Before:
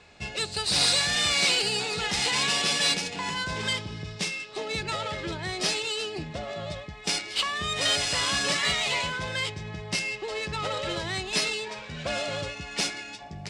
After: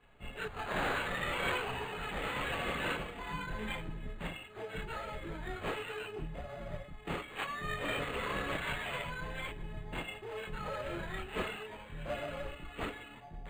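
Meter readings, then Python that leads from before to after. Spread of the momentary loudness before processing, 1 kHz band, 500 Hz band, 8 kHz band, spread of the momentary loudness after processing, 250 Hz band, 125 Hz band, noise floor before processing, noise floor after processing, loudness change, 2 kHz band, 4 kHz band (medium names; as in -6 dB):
12 LU, -6.0 dB, -6.5 dB, -25.0 dB, 10 LU, -6.0 dB, -7.0 dB, -42 dBFS, -51 dBFS, -12.0 dB, -9.0 dB, -19.0 dB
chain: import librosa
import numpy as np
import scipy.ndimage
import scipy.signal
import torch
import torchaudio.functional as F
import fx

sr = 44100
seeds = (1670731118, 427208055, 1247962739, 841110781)

y = fx.octave_divider(x, sr, octaves=2, level_db=-1.0)
y = fx.chorus_voices(y, sr, voices=6, hz=0.54, base_ms=28, depth_ms=4.5, mix_pct=60)
y = np.interp(np.arange(len(y)), np.arange(len(y))[::8], y[::8])
y = y * 10.0 ** (-6.0 / 20.0)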